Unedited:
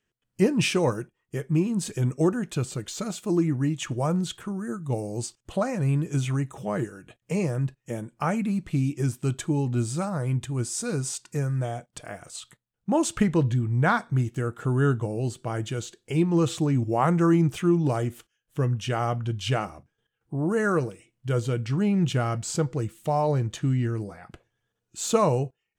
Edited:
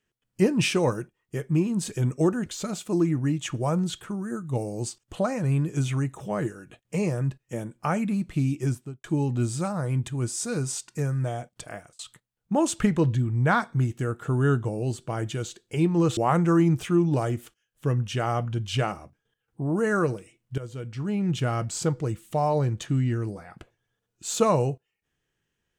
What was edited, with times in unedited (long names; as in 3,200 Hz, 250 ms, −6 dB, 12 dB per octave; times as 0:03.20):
0:02.46–0:02.83: remove
0:09.01–0:09.41: fade out and dull
0:12.10–0:12.36: fade out
0:16.54–0:16.90: remove
0:21.31–0:22.33: fade in, from −14.5 dB